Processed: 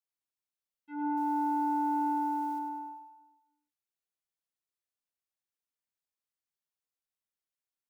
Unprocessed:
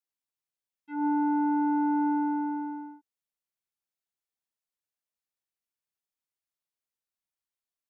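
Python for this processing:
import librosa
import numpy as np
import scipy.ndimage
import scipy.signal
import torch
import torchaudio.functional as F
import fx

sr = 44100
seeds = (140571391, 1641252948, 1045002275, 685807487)

p1 = fx.quant_dither(x, sr, seeds[0], bits=10, dither='triangular', at=(1.17, 2.59))
p2 = p1 + fx.echo_feedback(p1, sr, ms=101, feedback_pct=57, wet_db=-7.0, dry=0)
y = p2 * 10.0 ** (-5.0 / 20.0)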